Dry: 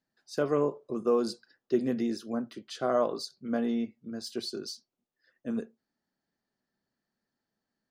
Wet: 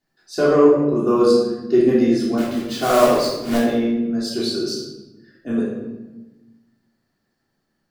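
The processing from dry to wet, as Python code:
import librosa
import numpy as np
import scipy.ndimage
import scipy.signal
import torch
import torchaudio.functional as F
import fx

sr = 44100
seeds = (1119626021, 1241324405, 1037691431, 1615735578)

y = fx.quant_companded(x, sr, bits=4, at=(2.37, 3.57), fade=0.02)
y = fx.room_shoebox(y, sr, seeds[0], volume_m3=530.0, walls='mixed', distance_m=3.3)
y = y * librosa.db_to_amplitude(4.5)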